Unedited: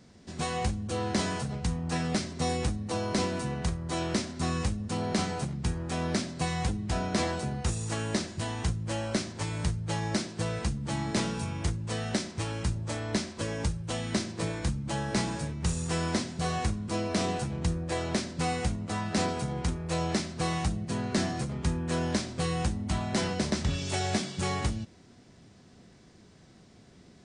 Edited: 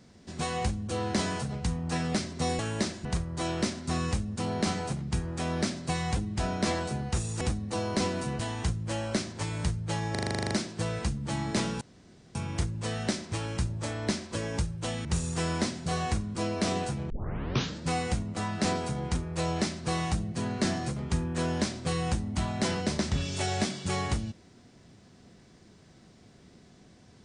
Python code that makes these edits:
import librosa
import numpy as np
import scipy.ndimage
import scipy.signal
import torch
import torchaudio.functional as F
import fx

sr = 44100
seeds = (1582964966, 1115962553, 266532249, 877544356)

y = fx.edit(x, sr, fx.swap(start_s=2.59, length_s=0.98, other_s=7.93, other_length_s=0.46),
    fx.stutter(start_s=10.11, slice_s=0.04, count=11),
    fx.insert_room_tone(at_s=11.41, length_s=0.54),
    fx.cut(start_s=14.11, length_s=1.47),
    fx.tape_start(start_s=17.63, length_s=0.76), tone=tone)